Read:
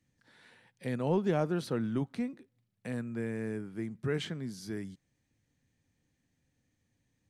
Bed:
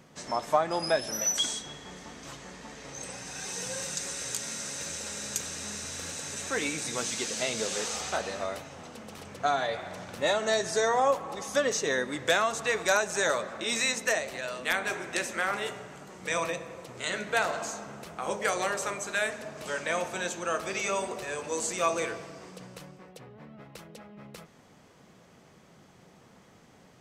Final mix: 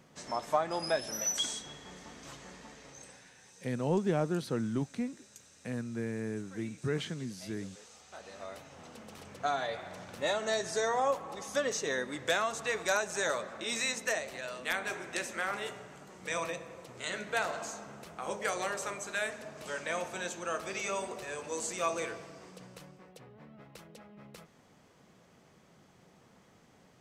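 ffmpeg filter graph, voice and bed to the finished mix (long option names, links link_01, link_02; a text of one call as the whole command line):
ffmpeg -i stem1.wav -i stem2.wav -filter_complex "[0:a]adelay=2800,volume=-0.5dB[link_01];[1:a]volume=12.5dB,afade=type=out:start_time=2.52:duration=0.8:silence=0.133352,afade=type=in:start_time=8.08:duration=0.85:silence=0.141254[link_02];[link_01][link_02]amix=inputs=2:normalize=0" out.wav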